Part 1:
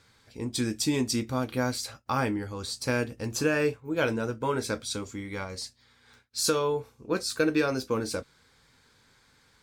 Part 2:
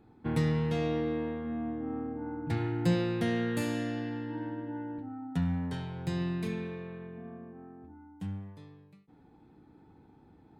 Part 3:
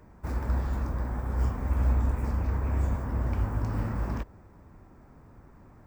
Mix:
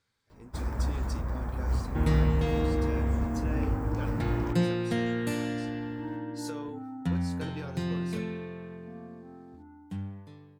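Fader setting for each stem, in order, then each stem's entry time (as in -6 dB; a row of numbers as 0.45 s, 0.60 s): -17.0 dB, +1.0 dB, -1.5 dB; 0.00 s, 1.70 s, 0.30 s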